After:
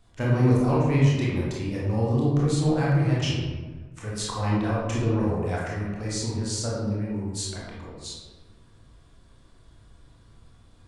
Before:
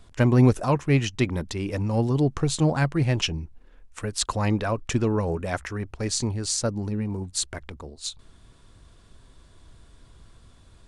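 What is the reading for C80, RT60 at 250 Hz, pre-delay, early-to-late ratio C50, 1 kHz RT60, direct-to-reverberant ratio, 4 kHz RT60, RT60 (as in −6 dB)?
2.0 dB, 1.7 s, 20 ms, −1.5 dB, 1.3 s, −6.0 dB, 0.75 s, 1.4 s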